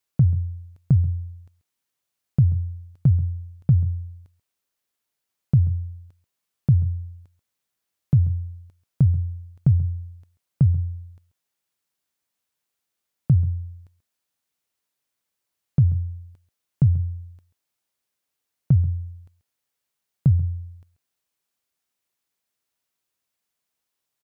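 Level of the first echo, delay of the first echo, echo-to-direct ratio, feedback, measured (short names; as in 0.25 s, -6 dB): -17.5 dB, 0.136 s, -17.5 dB, no steady repeat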